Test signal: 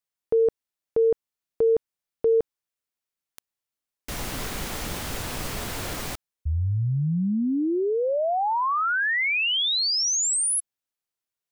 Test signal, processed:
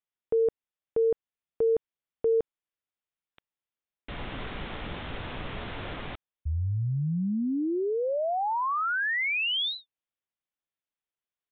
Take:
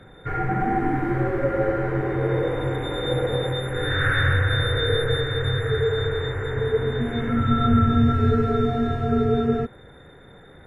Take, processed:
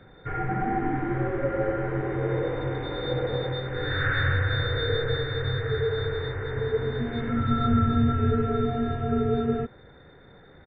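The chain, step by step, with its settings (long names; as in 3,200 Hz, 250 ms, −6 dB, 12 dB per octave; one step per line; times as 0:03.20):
downsampling to 8,000 Hz
level −4 dB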